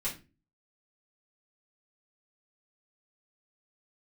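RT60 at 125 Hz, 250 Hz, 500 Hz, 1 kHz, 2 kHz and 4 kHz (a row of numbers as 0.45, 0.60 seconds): 0.55, 0.50, 0.35, 0.25, 0.30, 0.25 seconds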